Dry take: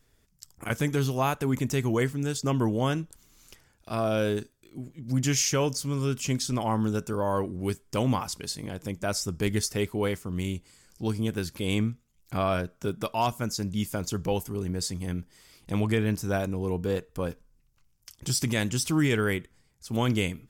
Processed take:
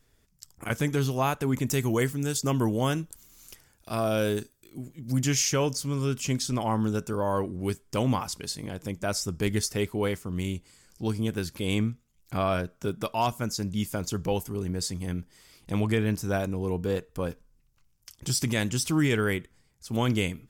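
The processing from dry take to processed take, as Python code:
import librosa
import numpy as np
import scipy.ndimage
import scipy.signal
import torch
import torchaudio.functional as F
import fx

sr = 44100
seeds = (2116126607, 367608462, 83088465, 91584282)

y = fx.high_shelf(x, sr, hz=7900.0, db=11.0, at=(1.67, 5.24))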